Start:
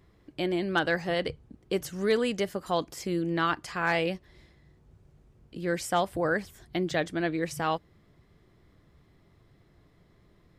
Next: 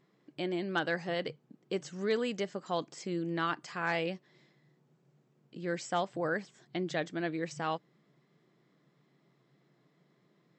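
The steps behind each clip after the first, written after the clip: FFT band-pass 120–8100 Hz; gain -5.5 dB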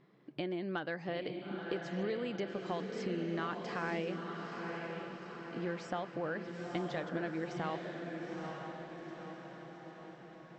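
compressor 6:1, threshold -39 dBFS, peak gain reduction 12.5 dB; air absorption 170 m; diffused feedback echo 0.906 s, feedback 57%, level -4 dB; gain +4.5 dB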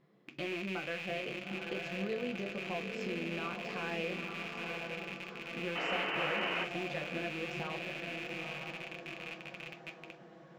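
rattling part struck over -51 dBFS, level -27 dBFS; painted sound noise, 5.75–6.65, 260–3100 Hz -33 dBFS; on a send at -3.5 dB: reverb RT60 0.25 s, pre-delay 3 ms; on the sum: gain -4.5 dB

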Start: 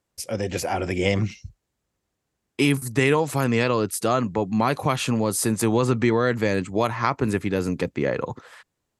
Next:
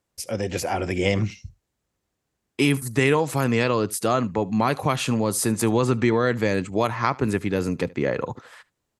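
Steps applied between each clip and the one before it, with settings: echo 75 ms -23 dB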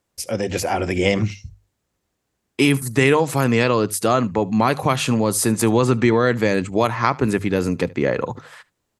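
notches 50/100/150 Hz; gain +4 dB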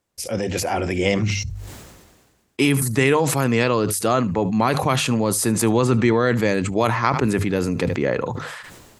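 sustainer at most 39 dB/s; gain -2 dB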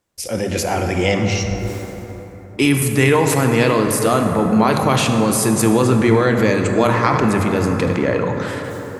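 plate-style reverb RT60 4.4 s, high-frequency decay 0.35×, DRR 3.5 dB; gain +2 dB

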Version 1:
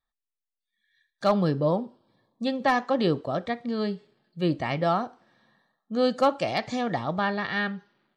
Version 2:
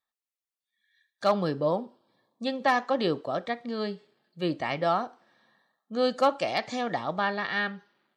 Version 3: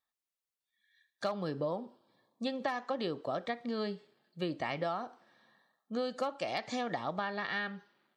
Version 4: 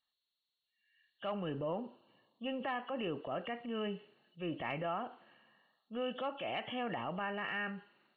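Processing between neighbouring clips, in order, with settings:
HPF 340 Hz 6 dB/oct
compressor 12:1, threshold -29 dBFS, peak gain reduction 12.5 dB; gain -1.5 dB
nonlinear frequency compression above 2600 Hz 4:1; transient shaper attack -6 dB, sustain +4 dB; gain -2 dB

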